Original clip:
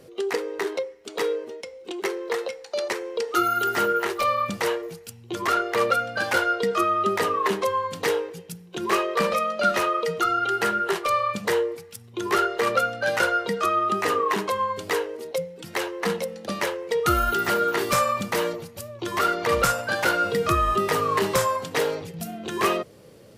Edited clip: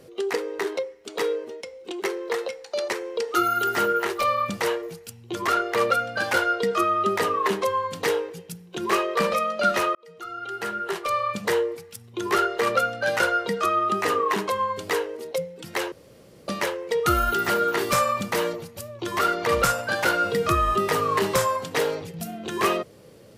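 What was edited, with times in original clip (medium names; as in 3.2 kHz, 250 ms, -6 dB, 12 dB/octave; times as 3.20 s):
9.95–11.47 s: fade in
15.92–16.48 s: room tone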